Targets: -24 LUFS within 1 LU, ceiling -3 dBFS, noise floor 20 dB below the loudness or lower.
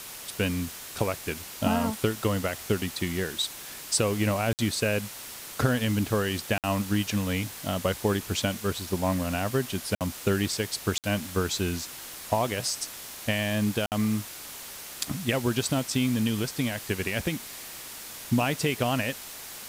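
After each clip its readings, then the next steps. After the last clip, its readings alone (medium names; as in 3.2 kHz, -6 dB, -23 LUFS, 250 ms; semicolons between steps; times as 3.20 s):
dropouts 5; longest dropout 58 ms; noise floor -42 dBFS; noise floor target -49 dBFS; loudness -28.5 LUFS; peak level -11.0 dBFS; loudness target -24.0 LUFS
-> interpolate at 4.53/6.58/9.95/10.98/13.86 s, 58 ms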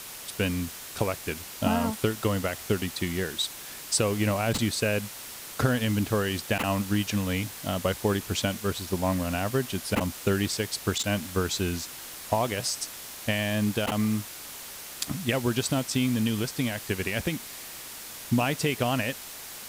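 dropouts 0; noise floor -42 dBFS; noise floor target -49 dBFS
-> noise print and reduce 7 dB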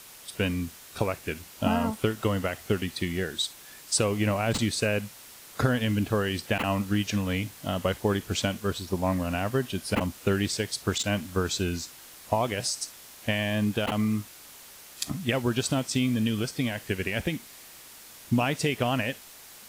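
noise floor -48 dBFS; noise floor target -49 dBFS
-> noise print and reduce 6 dB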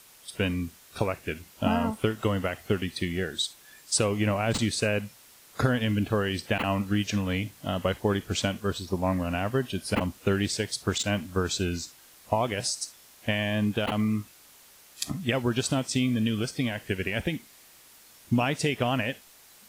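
noise floor -54 dBFS; loudness -28.5 LUFS; peak level -11.0 dBFS; loudness target -24.0 LUFS
-> trim +4.5 dB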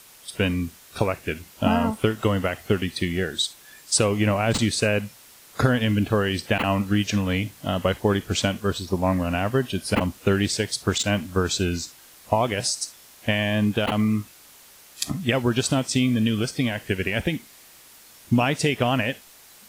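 loudness -24.0 LUFS; peak level -6.5 dBFS; noise floor -50 dBFS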